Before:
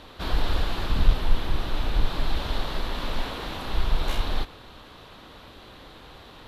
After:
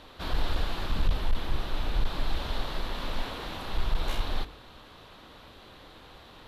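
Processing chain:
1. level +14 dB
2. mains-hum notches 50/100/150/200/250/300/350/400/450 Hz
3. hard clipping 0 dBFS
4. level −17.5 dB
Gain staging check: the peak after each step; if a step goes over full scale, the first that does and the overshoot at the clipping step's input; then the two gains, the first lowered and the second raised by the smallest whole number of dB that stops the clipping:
+7.5, +7.0, 0.0, −17.5 dBFS
step 1, 7.0 dB
step 1 +7 dB, step 4 −10.5 dB

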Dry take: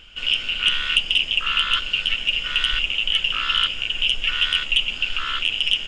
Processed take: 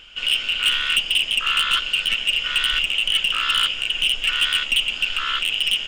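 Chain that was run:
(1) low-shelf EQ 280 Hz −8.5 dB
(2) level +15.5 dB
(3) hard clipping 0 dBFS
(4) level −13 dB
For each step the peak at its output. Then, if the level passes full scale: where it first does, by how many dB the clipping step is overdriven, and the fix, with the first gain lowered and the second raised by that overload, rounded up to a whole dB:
−5.5, +10.0, 0.0, −13.0 dBFS
step 2, 10.0 dB
step 2 +5.5 dB, step 4 −3 dB

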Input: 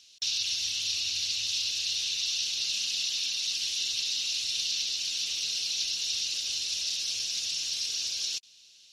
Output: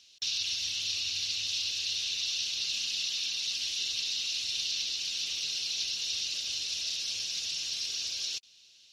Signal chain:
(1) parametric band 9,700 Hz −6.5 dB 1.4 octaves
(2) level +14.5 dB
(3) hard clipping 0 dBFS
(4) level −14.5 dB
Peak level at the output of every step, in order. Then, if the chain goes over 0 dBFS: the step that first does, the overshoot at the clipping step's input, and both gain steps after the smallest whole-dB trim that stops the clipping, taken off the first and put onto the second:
−19.0, −4.5, −4.5, −19.0 dBFS
no step passes full scale

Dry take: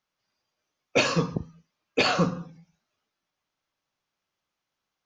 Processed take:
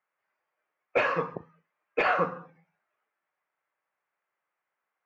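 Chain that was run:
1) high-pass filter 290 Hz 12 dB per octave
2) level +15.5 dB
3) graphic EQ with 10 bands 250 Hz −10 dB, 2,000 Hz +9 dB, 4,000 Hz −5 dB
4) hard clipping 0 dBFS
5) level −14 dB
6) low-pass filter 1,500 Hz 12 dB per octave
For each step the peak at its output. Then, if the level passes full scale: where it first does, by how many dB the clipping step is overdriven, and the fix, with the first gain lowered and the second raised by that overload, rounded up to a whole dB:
−8.5, +7.0, +9.5, 0.0, −14.0, −14.0 dBFS
step 2, 9.5 dB
step 2 +5.5 dB, step 5 −4 dB

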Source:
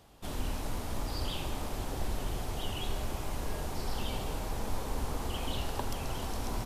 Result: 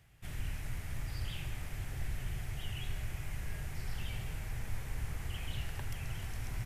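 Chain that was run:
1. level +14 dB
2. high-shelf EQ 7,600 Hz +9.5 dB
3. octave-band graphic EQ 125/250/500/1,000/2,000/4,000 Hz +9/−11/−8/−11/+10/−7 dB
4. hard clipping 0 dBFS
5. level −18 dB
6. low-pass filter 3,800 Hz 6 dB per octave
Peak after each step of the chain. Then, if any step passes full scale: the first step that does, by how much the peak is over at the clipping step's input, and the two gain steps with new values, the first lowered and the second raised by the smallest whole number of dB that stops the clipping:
−6.0, −5.5, −5.5, −5.5, −23.5, −24.0 dBFS
no step passes full scale

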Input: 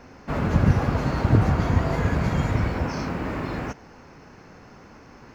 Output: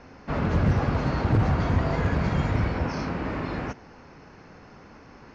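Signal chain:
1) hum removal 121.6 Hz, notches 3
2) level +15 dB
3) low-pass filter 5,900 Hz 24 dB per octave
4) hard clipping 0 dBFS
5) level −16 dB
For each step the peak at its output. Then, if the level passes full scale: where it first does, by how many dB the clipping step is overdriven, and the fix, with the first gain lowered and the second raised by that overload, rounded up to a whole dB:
−6.0, +9.0, +9.0, 0.0, −16.0 dBFS
step 2, 9.0 dB
step 2 +6 dB, step 5 −7 dB

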